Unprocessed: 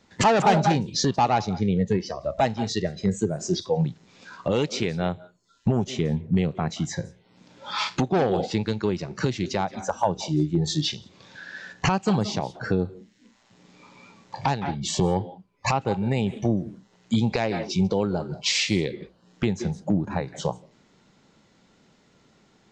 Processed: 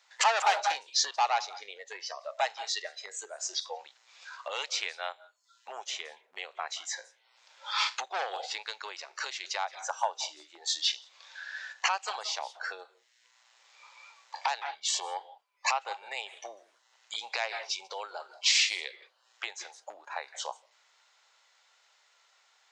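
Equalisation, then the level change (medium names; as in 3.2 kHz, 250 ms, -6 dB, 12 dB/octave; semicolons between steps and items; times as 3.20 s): Bessel high-pass 1.1 kHz, order 6; 0.0 dB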